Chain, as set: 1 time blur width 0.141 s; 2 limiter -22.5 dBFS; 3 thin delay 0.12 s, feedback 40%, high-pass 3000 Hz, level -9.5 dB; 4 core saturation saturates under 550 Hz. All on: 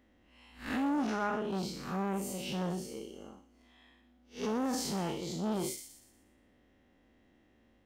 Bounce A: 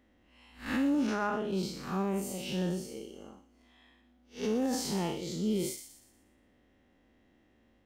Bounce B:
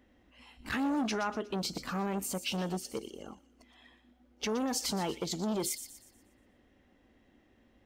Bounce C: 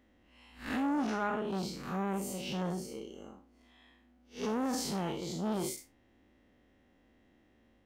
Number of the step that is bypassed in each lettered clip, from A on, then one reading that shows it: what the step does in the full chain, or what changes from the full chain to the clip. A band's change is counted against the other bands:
4, crest factor change -2.0 dB; 1, 4 kHz band +5.0 dB; 3, momentary loudness spread change -1 LU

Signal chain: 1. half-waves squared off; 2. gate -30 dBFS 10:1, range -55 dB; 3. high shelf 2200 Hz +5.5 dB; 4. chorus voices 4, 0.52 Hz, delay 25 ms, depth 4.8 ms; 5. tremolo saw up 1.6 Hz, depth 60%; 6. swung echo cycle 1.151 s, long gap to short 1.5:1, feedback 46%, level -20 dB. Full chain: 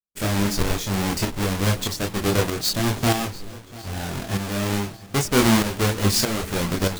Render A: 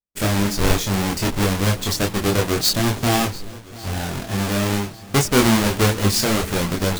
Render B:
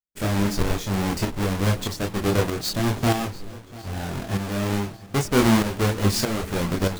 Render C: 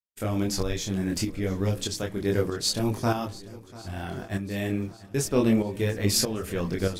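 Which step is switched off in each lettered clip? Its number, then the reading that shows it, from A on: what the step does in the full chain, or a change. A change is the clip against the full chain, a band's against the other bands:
5, loudness change +3.0 LU; 3, 8 kHz band -4.5 dB; 1, distortion -5 dB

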